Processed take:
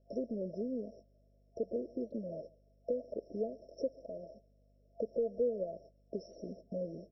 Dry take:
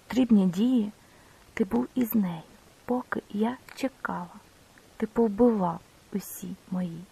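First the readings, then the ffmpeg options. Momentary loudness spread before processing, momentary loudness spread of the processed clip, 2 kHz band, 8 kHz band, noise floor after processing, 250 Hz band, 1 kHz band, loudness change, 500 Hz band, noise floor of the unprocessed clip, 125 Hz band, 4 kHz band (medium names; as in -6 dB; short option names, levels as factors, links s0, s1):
15 LU, 14 LU, under -40 dB, under -20 dB, -68 dBFS, -17.0 dB, under -20 dB, -12.0 dB, -5.5 dB, -57 dBFS, -17.5 dB, under -20 dB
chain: -filter_complex "[0:a]equalizer=f=180:t=o:w=0.5:g=-3,asplit=2[s0][s1];[s1]acrusher=bits=5:mode=log:mix=0:aa=0.000001,volume=0.282[s2];[s0][s2]amix=inputs=2:normalize=0,agate=range=0.0708:threshold=0.00708:ratio=16:detection=peak,asplit=2[s3][s4];[s4]highpass=f=720:p=1,volume=3.55,asoftclip=type=tanh:threshold=0.355[s5];[s3][s5]amix=inputs=2:normalize=0,lowpass=f=6200:p=1,volume=0.501,acompressor=threshold=0.0251:ratio=5,asoftclip=type=tanh:threshold=0.0794,acrossover=split=530 2800:gain=0.141 1 0.2[s6][s7][s8];[s6][s7][s8]amix=inputs=3:normalize=0,aeval=exprs='val(0)+0.000141*(sin(2*PI*50*n/s)+sin(2*PI*2*50*n/s)/2+sin(2*PI*3*50*n/s)/3+sin(2*PI*4*50*n/s)/4+sin(2*PI*5*50*n/s)/5)':c=same,afftfilt=real='re*(1-between(b*sr/4096,680,5200))':imag='im*(1-between(b*sr/4096,680,5200))':win_size=4096:overlap=0.75,asplit=2[s9][s10];[s10]adelay=139.9,volume=0.0631,highshelf=f=4000:g=-3.15[s11];[s9][s11]amix=inputs=2:normalize=0,adynamicsmooth=sensitivity=4:basefreq=5700,volume=3.16" -ar 16000 -c:a libmp3lame -b:a 24k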